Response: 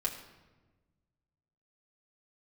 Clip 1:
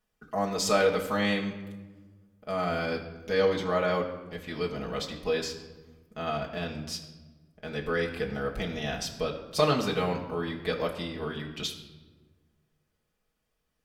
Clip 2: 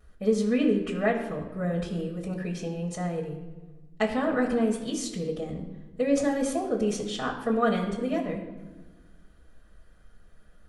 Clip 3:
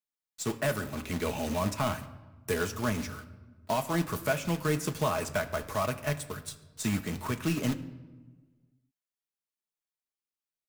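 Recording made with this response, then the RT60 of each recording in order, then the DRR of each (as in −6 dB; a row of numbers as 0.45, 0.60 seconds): 1; 1.2, 1.2, 1.3 seconds; −3.0, −10.5, 6.0 decibels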